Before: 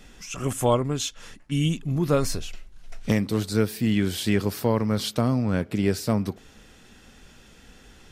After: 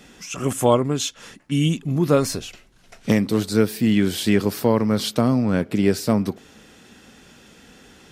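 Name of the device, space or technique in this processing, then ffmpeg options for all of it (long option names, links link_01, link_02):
filter by subtraction: -filter_complex "[0:a]asplit=2[link_01][link_02];[link_02]lowpass=230,volume=-1[link_03];[link_01][link_03]amix=inputs=2:normalize=0,volume=3.5dB"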